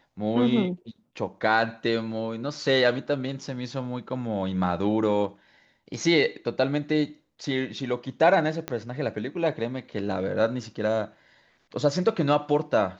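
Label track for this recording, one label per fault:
8.680000	8.680000	pop -15 dBFS

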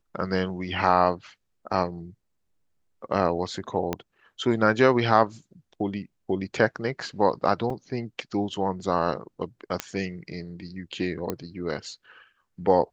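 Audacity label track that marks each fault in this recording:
3.930000	3.930000	pop -12 dBFS
7.700000	7.700000	gap 2.7 ms
9.800000	9.800000	pop -10 dBFS
11.300000	11.300000	pop -14 dBFS

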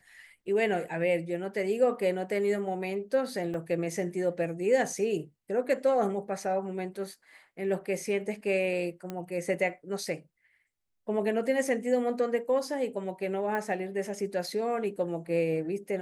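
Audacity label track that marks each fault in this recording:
3.540000	3.540000	gap 2.2 ms
9.100000	9.100000	pop -22 dBFS
13.550000	13.550000	pop -21 dBFS

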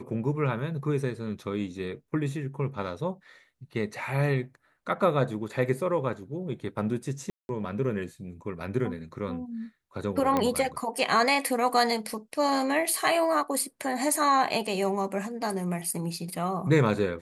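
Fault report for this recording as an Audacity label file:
7.300000	7.490000	gap 0.191 s
10.370000	10.370000	pop -13 dBFS

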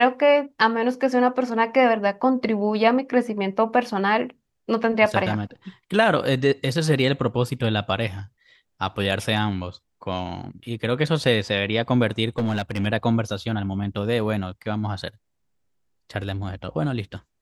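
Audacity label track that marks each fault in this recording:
12.290000	12.870000	clipped -18.5 dBFS

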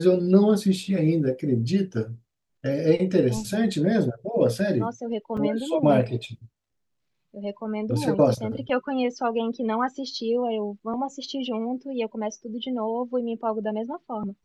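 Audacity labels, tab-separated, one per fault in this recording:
5.370000	5.370000	gap 4.9 ms

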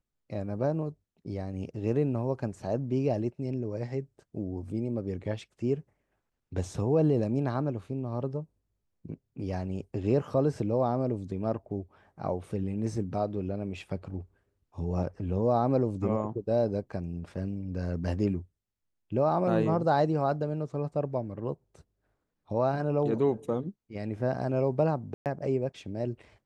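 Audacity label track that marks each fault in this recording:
25.140000	25.260000	gap 0.118 s

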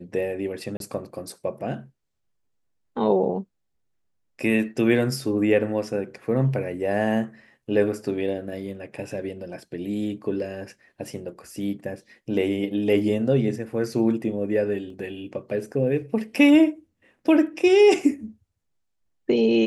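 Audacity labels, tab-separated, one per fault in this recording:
0.770000	0.800000	gap 32 ms
14.900000	14.900000	gap 2.6 ms

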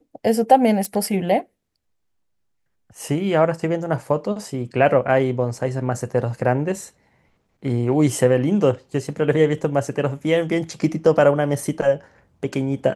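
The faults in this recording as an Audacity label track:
0.850000	0.850000	pop -13 dBFS

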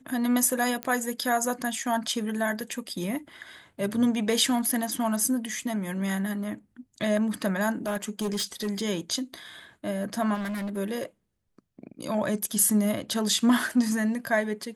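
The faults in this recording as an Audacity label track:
0.830000	0.830000	pop -15 dBFS
7.860000	8.830000	clipped -24.5 dBFS
10.340000	10.780000	clipped -29.5 dBFS

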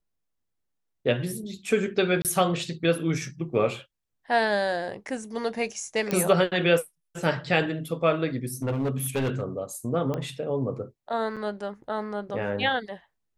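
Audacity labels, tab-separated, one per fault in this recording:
2.220000	2.250000	gap 28 ms
6.110000	6.110000	pop -12 dBFS
8.450000	9.430000	clipped -22.5 dBFS
10.140000	10.140000	pop -18 dBFS
11.360000	11.370000	gap 6.8 ms

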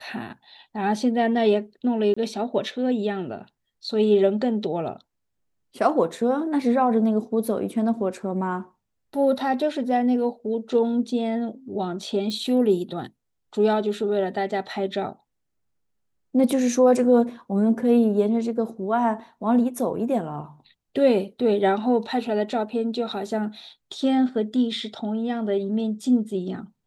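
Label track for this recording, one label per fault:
2.140000	2.170000	gap 25 ms
12.300000	12.300000	pop -19 dBFS

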